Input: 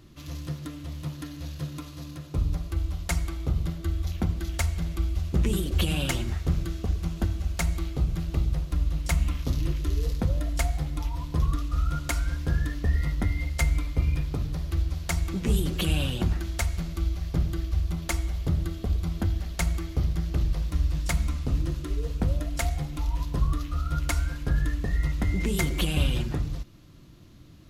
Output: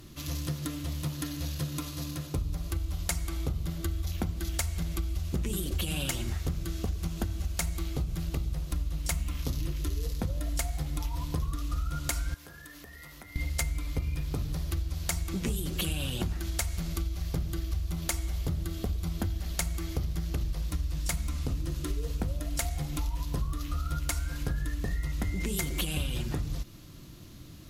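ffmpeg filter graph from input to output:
-filter_complex "[0:a]asettb=1/sr,asplit=3[a][b][c];[a]atrim=end=12.344[d];[b]atrim=start=12.34:end=13.36,asetpts=PTS-STARTPTS,afade=t=in:d=0.004:c=qsin,afade=t=out:st=1.016:d=0.004:c=qsin,highpass=f=1.2k:p=1,equalizer=f=4.7k:w=0.4:g=-7.5,acompressor=threshold=-47dB:ratio=10:attack=3.2:release=140:knee=1:detection=peak[e];[c]atrim=start=13.356[f];[d][e]acrossfade=d=0.004:c1=hsin:c2=qsin[g];[g][f]acrossfade=d=0.004:c1=qsin:c2=hsin,aemphasis=mode=production:type=cd,acompressor=threshold=-31dB:ratio=6,volume=3dB"

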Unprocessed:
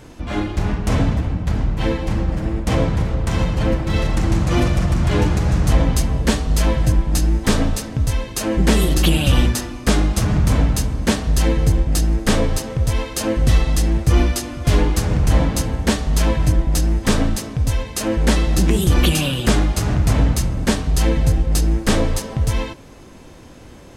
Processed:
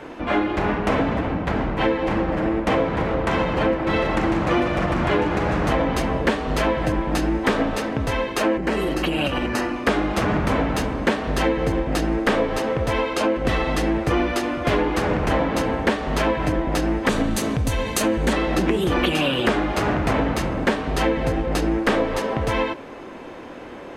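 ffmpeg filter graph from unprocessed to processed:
-filter_complex "[0:a]asettb=1/sr,asplit=3[a][b][c];[a]atrim=end=8.574[d];[b]atrim=start=8.57:end=9.76,asetpts=PTS-STARTPTS,afade=t=in:d=0.004:c=qsin,afade=t=out:st=1.186:d=0.004:c=qsin,bandreject=f=3.5k:w=6.6,acompressor=threshold=-18dB:ratio=10:attack=3.2:release=140:knee=1:detection=peak[e];[c]atrim=start=9.756[f];[d][e]acrossfade=d=0.004:c1=hsin:c2=qsin[g];[g][f]acrossfade=d=0.004:c1=qsin:c2=hsin,asettb=1/sr,asplit=3[h][i][j];[h]atrim=end=13.004[k];[i]atrim=start=13:end=13.45,asetpts=PTS-STARTPTS,afade=t=in:d=0.004:c=qsin,afade=t=out:st=0.446:d=0.004:c=qsin,acompressor=threshold=-19dB:ratio=2:attack=3.2:release=140:knee=1:detection=peak,lowpass=11k,bandreject=f=1.8k:w=12[l];[j]atrim=start=13.446[m];[k][l]acrossfade=d=0.004:c1=hsin:c2=qsin[n];[n][m]acrossfade=d=0.004:c1=qsin:c2=hsin,asettb=1/sr,asplit=3[o][p][q];[o]atrim=end=17.094[r];[p]atrim=start=17.09:end=18.33,asetpts=PTS-STARTPTS,afade=t=in:d=0.004:c=qsin,afade=t=out:st=1.236:d=0.004:c=qsin,bandreject=f=5.2k:w=9.7,acompressor=threshold=-26dB:ratio=1.5:attack=3.2:release=140:knee=1:detection=peak,bass=f=250:g=9,treble=f=4k:g=14[s];[q]atrim=start=18.326[t];[r][s]acrossfade=d=0.004:c1=hsin:c2=qsin[u];[u][t]acrossfade=d=0.004:c1=qsin:c2=hsin,acrossover=split=250 3000:gain=0.126 1 0.112[v][w][x];[v][w][x]amix=inputs=3:normalize=0,acompressor=threshold=-26dB:ratio=5,volume=9dB"

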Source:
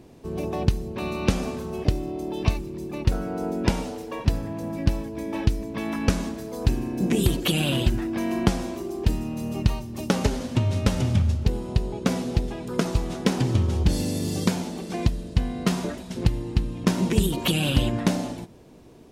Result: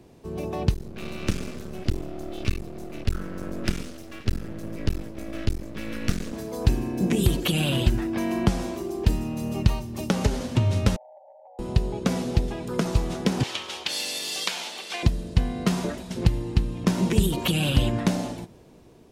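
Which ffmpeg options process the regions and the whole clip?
-filter_complex "[0:a]asettb=1/sr,asplit=3[a][b][c];[a]atrim=end=0.744[d];[b]atrim=start=0.74:end=6.33,asetpts=PTS-STARTPTS,afade=t=in:d=0.004:c=qsin,afade=t=out:st=5.586:d=0.004:c=qsin,asuperstop=centerf=690:order=12:qfactor=0.85,aeval=exprs='max(val(0),0)':c=same[e];[c]atrim=start=6.326[f];[d][e]acrossfade=d=0.004:c1=hsin:c2=qsin[g];[g][f]acrossfade=d=0.004:c1=qsin:c2=hsin,asettb=1/sr,asplit=3[h][i][j];[h]atrim=end=10.964[k];[i]atrim=start=10.96:end=11.59,asetpts=PTS-STARTPTS,afade=t=in:d=0.004:c=qsin,afade=t=out:st=0.626:d=0.004:c=qsin,asuperpass=centerf=700:order=12:qfactor=2,aecho=1:1:5.3:0.46,atrim=end_sample=27783,acompressor=threshold=-47dB:ratio=6:attack=3.2:release=140:knee=1:detection=peak[l];[j]atrim=start=11.586[m];[k][l]acrossfade=d=0.004:c1=hsin:c2=qsin[n];[n][m]acrossfade=d=0.004:c1=qsin:c2=hsin,asettb=1/sr,asplit=3[o][p][q];[o]atrim=end=13.434[r];[p]atrim=start=13.43:end=15.03,asetpts=PTS-STARTPTS,afade=t=in:d=0.004:c=qsin,afade=t=out:st=1.596:d=0.004:c=qsin,highpass=790,equalizer=f=3.1k:t=o:w=1.5:g=11[s];[q]atrim=start=15.026[t];[r][s]acrossfade=d=0.004:c1=hsin:c2=qsin[u];[u][t]acrossfade=d=0.004:c1=qsin:c2=hsin,dynaudnorm=f=260:g=7:m=4dB,equalizer=f=270:w=4.3:g=-3,acrossover=split=230[v][w];[w]acompressor=threshold=-21dB:ratio=6[x];[v][x]amix=inputs=2:normalize=0,volume=-2dB"

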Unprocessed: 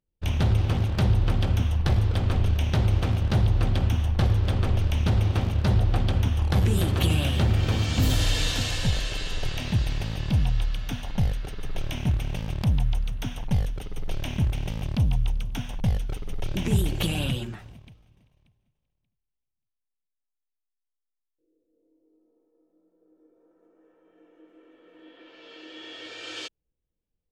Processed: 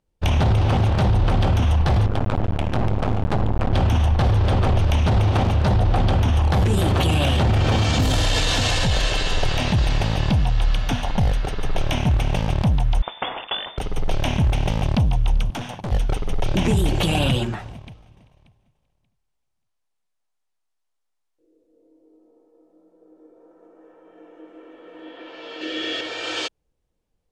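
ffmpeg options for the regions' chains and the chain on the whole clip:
-filter_complex "[0:a]asettb=1/sr,asplit=3[a][b][c];[a]atrim=end=2.064[d];[b]atrim=start=2.06:end=3.73,asetpts=PTS-STARTPTS,afade=t=in:d=0.004:c=qsin,afade=t=out:st=1.666:d=0.004:c=qsin,equalizer=f=71:t=o:w=0.3:g=-7,adynamicsmooth=sensitivity=4:basefreq=1.2k,aeval=exprs='max(val(0),0)':c=same[e];[c]atrim=start=3.726[f];[d][e]acrossfade=d=0.004:c1=hsin:c2=qsin[g];[g][f]acrossfade=d=0.004:c1=qsin:c2=hsin,asettb=1/sr,asplit=3[h][i][j];[h]atrim=end=13.024[k];[i]atrim=start=13.02:end=13.78,asetpts=PTS-STARTPTS,afade=t=in:d=0.004:c=qsin,afade=t=out:st=0.756:d=0.004:c=qsin,highpass=f=680:p=1,aemphasis=mode=production:type=75kf,lowpass=f=3.1k:t=q:w=0.5098,lowpass=f=3.1k:t=q:w=0.6013,lowpass=f=3.1k:t=q:w=0.9,lowpass=f=3.1k:t=q:w=2.563,afreqshift=-3600[l];[j]atrim=start=13.776[m];[k][l]acrossfade=d=0.004:c1=hsin:c2=qsin[n];[n][m]acrossfade=d=0.004:c1=qsin:c2=hsin,asettb=1/sr,asplit=3[o][p][q];[o]atrim=end=15.504[r];[p]atrim=start=15.5:end=15.92,asetpts=PTS-STARTPTS,afade=t=in:d=0.004:c=qsin,afade=t=out:st=0.416:d=0.004:c=qsin,highpass=f=100:w=0.5412,highpass=f=100:w=1.3066,aeval=exprs='(tanh(56.2*val(0)+0.45)-tanh(0.45))/56.2':c=same[s];[q]atrim=start=15.916[t];[r][s]acrossfade=d=0.004:c1=hsin:c2=qsin[u];[u][t]acrossfade=d=0.004:c1=qsin:c2=hsin,asettb=1/sr,asplit=3[v][w][x];[v]atrim=end=25.614[y];[w]atrim=start=25.61:end=26.01,asetpts=PTS-STARTPTS,afade=t=in:d=0.004:c=qsin,afade=t=out:st=0.396:d=0.004:c=qsin,equalizer=f=900:t=o:w=0.61:g=-13,acontrast=54[z];[x]atrim=start=26.006[aa];[y][z]acrossfade=d=0.004:c1=hsin:c2=qsin[ab];[ab][aa]acrossfade=d=0.004:c1=qsin:c2=hsin,alimiter=limit=-20.5dB:level=0:latency=1:release=12,lowpass=10k,equalizer=f=800:w=1:g=7,volume=8.5dB"

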